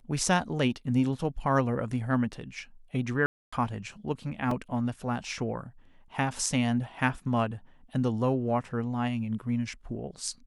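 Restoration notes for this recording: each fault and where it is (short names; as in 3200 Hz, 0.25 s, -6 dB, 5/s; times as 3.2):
3.26–3.52 gap 0.265 s
4.51 gap 3.5 ms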